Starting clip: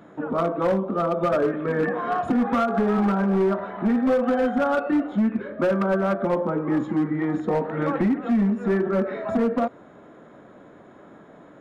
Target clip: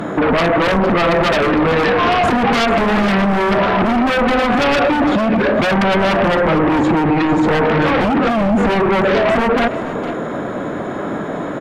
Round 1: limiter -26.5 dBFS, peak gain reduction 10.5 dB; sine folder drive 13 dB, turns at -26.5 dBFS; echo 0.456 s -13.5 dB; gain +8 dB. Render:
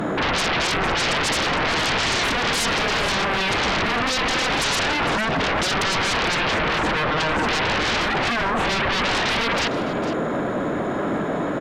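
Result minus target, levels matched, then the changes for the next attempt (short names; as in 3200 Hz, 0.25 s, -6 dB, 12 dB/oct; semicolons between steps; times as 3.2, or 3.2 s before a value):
sine folder: distortion +31 dB
change: sine folder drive 13 dB, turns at -19 dBFS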